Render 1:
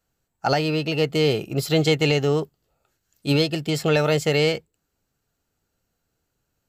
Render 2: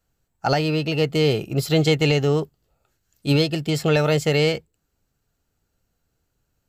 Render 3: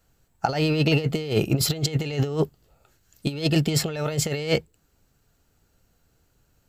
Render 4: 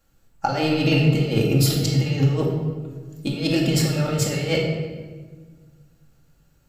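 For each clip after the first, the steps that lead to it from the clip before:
low shelf 110 Hz +7.5 dB
negative-ratio compressor -24 dBFS, ratio -0.5; gain +2 dB
shoebox room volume 1300 m³, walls mixed, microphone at 2.3 m; gain -2 dB

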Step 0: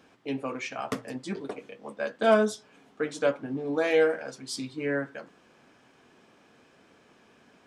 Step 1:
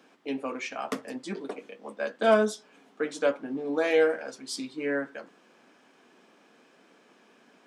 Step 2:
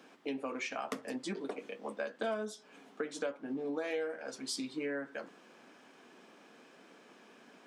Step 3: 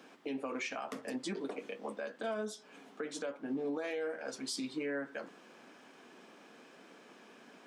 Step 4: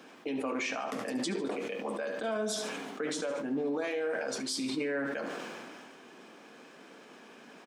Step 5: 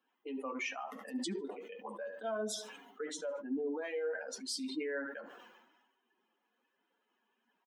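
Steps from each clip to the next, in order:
HPF 190 Hz 24 dB/oct
compressor 5:1, threshold -36 dBFS, peak gain reduction 18 dB; gain +1 dB
limiter -30.5 dBFS, peak gain reduction 8.5 dB; gain +1.5 dB
feedback echo 72 ms, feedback 45%, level -12 dB; on a send at -21 dB: reverb RT60 0.70 s, pre-delay 3 ms; on the sum: sustainer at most 23 dB/s; gain +3.5 dB
per-bin expansion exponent 2; brick-wall FIR high-pass 170 Hz; gain -1 dB

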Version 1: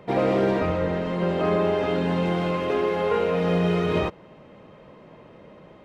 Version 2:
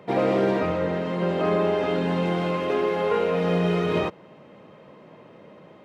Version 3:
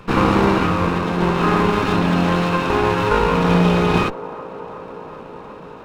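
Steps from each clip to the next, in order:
HPF 120 Hz 12 dB/oct
minimum comb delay 0.75 ms; band-limited delay 0.37 s, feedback 79%, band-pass 620 Hz, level -15 dB; gain +8.5 dB

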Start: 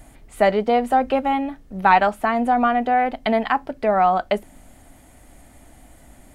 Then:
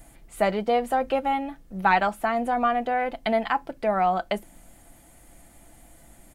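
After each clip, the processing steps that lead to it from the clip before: high shelf 7300 Hz +7 dB; comb 5.9 ms, depth 36%; gain -5 dB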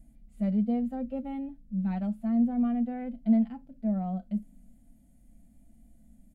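harmonic-percussive split percussive -14 dB; EQ curve 150 Hz 0 dB, 230 Hz +11 dB, 350 Hz -17 dB, 570 Hz -10 dB, 1000 Hz -24 dB, 2300 Hz -18 dB, 11000 Hz -15 dB; gain -2 dB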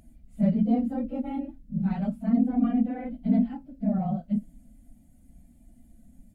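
phase scrambler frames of 50 ms; gain +3.5 dB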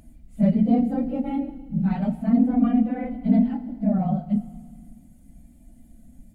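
FDN reverb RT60 1.6 s, low-frequency decay 1.45×, high-frequency decay 1×, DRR 11.5 dB; gain +4.5 dB

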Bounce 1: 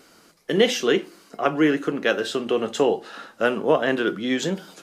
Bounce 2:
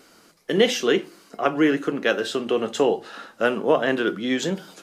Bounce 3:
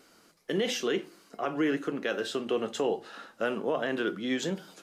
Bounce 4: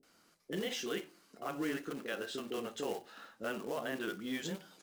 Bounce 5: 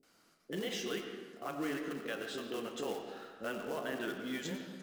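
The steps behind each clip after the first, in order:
notches 50/100/150 Hz
limiter -12.5 dBFS, peak gain reduction 7 dB; gain -6.5 dB
short-mantissa float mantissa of 2-bit; bands offset in time lows, highs 30 ms, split 440 Hz; gain -7 dB
reverb RT60 1.4 s, pre-delay 60 ms, DRR 5 dB; gain -1 dB

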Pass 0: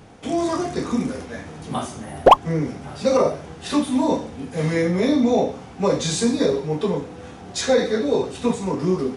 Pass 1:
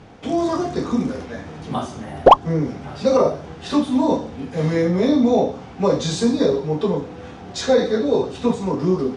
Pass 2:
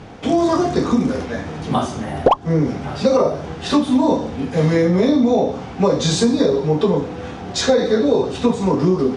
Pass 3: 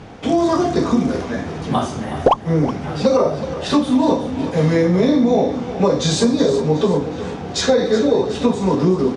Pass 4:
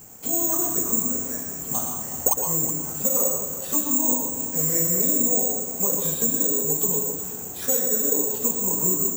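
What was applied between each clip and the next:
LPF 5300 Hz 12 dB/oct; dynamic EQ 2200 Hz, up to -6 dB, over -44 dBFS, Q 1.6; gain +2 dB
compressor 6:1, threshold -18 dBFS, peak gain reduction 13 dB; gain +6.5 dB
feedback echo 0.369 s, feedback 48%, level -13 dB
careless resampling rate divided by 6×, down filtered, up zero stuff; plate-style reverb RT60 0.59 s, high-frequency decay 0.8×, pre-delay 0.1 s, DRR 4 dB; gain -15.5 dB

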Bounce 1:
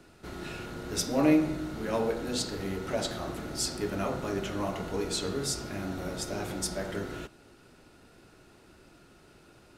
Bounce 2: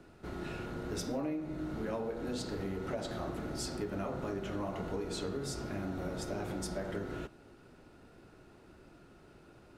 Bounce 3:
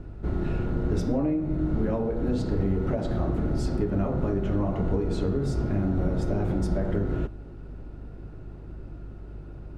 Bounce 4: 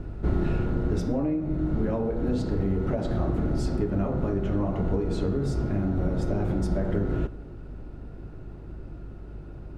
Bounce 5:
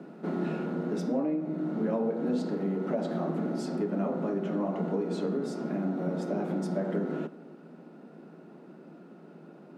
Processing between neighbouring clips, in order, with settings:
high shelf 2300 Hz -9.5 dB; compressor 10:1, threshold -33 dBFS, peak gain reduction 15 dB
buzz 50 Hz, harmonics 3, -60 dBFS; tilt -3.5 dB/oct; gain +4.5 dB
vocal rider 0.5 s; on a send at -19.5 dB: reverb RT60 1.8 s, pre-delay 27 ms
rippled Chebyshev high-pass 160 Hz, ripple 3 dB

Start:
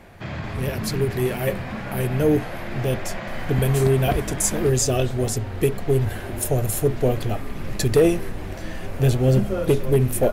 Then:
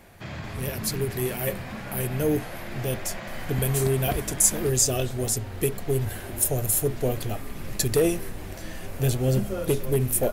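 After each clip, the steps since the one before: high shelf 5400 Hz +12 dB; gain -5.5 dB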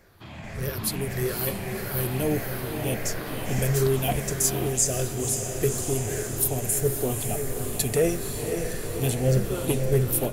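moving spectral ripple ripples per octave 0.56, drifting -1.6 Hz, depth 8 dB; diffused feedback echo 0.527 s, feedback 62%, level -6.5 dB; AGC gain up to 6 dB; gain -6.5 dB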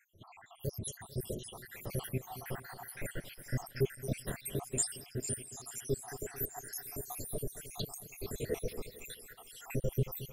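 random spectral dropouts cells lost 84%; split-band echo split 2400 Hz, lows 0.223 s, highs 0.445 s, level -14 dB; gain -5 dB

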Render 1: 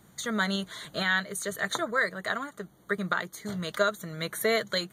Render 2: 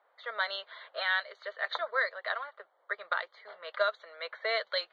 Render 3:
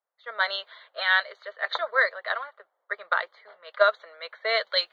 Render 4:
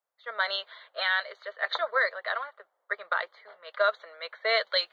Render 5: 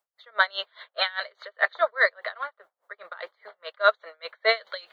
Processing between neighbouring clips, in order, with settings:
Chebyshev band-pass 520–4600 Hz, order 4; low-pass opened by the level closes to 1500 Hz, open at -23.5 dBFS; gain -2 dB
three-band expander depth 70%; gain +5.5 dB
limiter -14.5 dBFS, peak gain reduction 7.5 dB
dB-linear tremolo 4.9 Hz, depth 26 dB; gain +8 dB

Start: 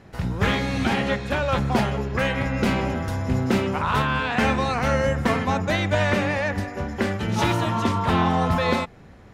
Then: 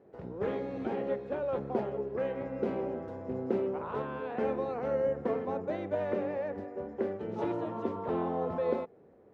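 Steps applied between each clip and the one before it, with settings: band-pass 440 Hz, Q 2.6; gain -2 dB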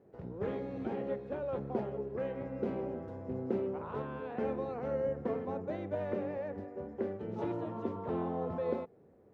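bell 94 Hz +6.5 dB 2.7 oct; gain -5 dB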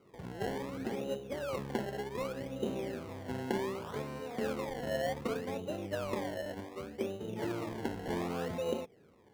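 decimation with a swept rate 25×, swing 100% 0.66 Hz; high shelf 2900 Hz -9 dB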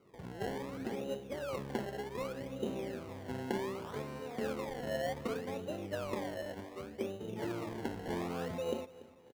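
feedback echo 0.288 s, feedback 42%, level -19 dB; gain -2 dB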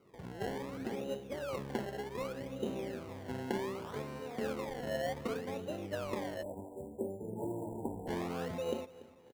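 spectral delete 6.43–8.07, 1000–7100 Hz

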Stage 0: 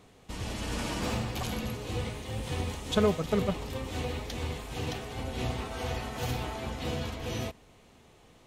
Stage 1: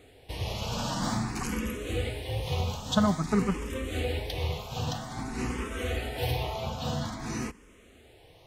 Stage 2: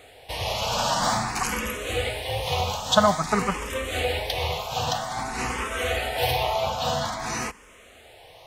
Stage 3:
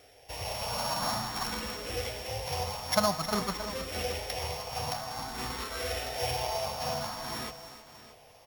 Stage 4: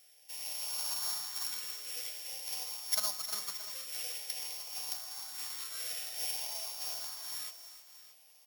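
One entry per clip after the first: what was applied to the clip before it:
endless phaser +0.5 Hz; gain +5 dB
resonant low shelf 460 Hz -9.5 dB, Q 1.5; gain +9 dB
sample sorter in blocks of 8 samples; feedback echo 0.626 s, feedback 26%, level -16 dB; lo-fi delay 0.31 s, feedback 35%, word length 6-bit, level -11 dB; gain -8 dB
differentiator

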